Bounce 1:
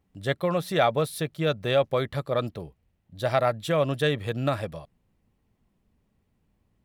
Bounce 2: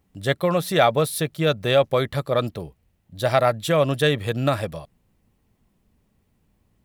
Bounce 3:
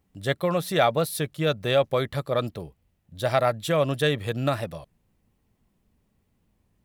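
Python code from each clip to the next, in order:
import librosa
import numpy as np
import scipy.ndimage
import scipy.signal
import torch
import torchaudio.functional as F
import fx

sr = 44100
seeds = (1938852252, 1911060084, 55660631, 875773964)

y1 = fx.high_shelf(x, sr, hz=6000.0, db=6.0)
y1 = y1 * librosa.db_to_amplitude(4.5)
y2 = fx.record_warp(y1, sr, rpm=33.33, depth_cents=100.0)
y2 = y2 * librosa.db_to_amplitude(-3.5)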